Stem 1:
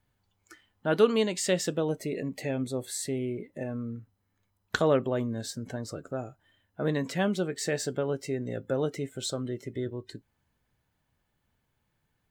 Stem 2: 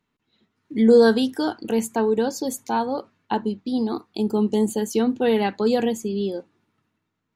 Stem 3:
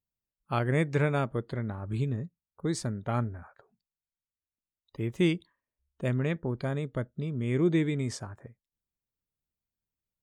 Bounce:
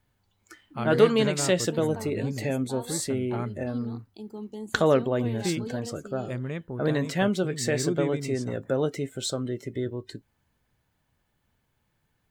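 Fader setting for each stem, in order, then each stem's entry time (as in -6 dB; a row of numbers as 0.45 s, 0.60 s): +3.0 dB, -17.5 dB, -4.0 dB; 0.00 s, 0.00 s, 0.25 s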